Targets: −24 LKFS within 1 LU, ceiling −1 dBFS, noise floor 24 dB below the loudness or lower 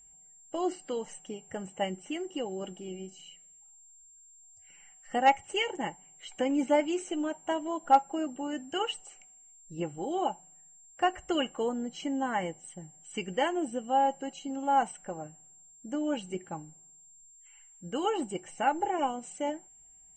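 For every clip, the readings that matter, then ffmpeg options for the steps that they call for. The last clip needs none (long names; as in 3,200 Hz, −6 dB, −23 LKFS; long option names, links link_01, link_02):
interfering tone 7,400 Hz; level of the tone −54 dBFS; integrated loudness −31.5 LKFS; sample peak −10.5 dBFS; target loudness −24.0 LKFS
→ -af "bandreject=frequency=7400:width=30"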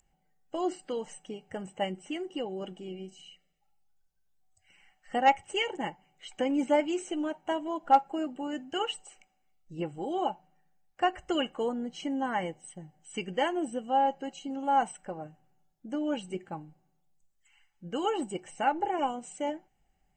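interfering tone none found; integrated loudness −31.5 LKFS; sample peak −10.5 dBFS; target loudness −24.0 LKFS
→ -af "volume=7.5dB"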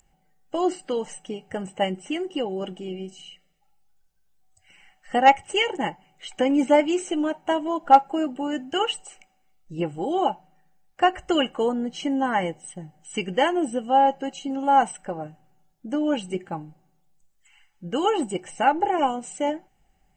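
integrated loudness −24.0 LKFS; sample peak −3.0 dBFS; background noise floor −66 dBFS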